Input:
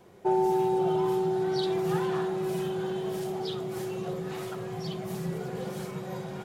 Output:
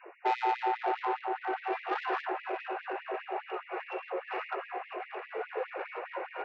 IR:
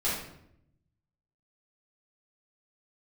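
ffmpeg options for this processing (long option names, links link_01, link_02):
-af "afftfilt=real='re*between(b*sr/4096,100,2900)':imag='im*between(b*sr/4096,100,2900)':win_size=4096:overlap=0.75,bandreject=frequency=370:width=12,asoftclip=type=tanh:threshold=-30.5dB,areverse,acompressor=mode=upward:threshold=-42dB:ratio=2.5,areverse,afftfilt=real='re*gte(b*sr/1024,300*pow(1900/300,0.5+0.5*sin(2*PI*4.9*pts/sr)))':imag='im*gte(b*sr/1024,300*pow(1900/300,0.5+0.5*sin(2*PI*4.9*pts/sr)))':win_size=1024:overlap=0.75,volume=8dB"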